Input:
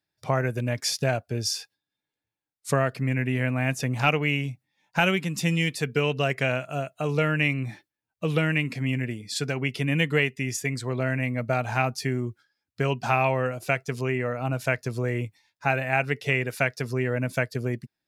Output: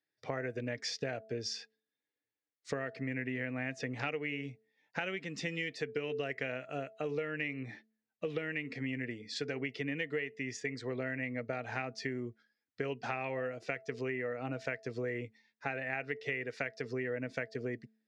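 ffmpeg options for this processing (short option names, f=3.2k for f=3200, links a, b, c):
-af "highpass=140,equalizer=f=170:t=q:w=4:g=-6,equalizer=f=280:t=q:w=4:g=5,equalizer=f=460:t=q:w=4:g=9,equalizer=f=990:t=q:w=4:g=-5,equalizer=f=1.9k:t=q:w=4:g=9,lowpass=f=5.9k:w=0.5412,lowpass=f=5.9k:w=1.3066,bandreject=f=220:t=h:w=4,bandreject=f=440:t=h:w=4,bandreject=f=660:t=h:w=4,acompressor=threshold=-25dB:ratio=6,volume=-8dB"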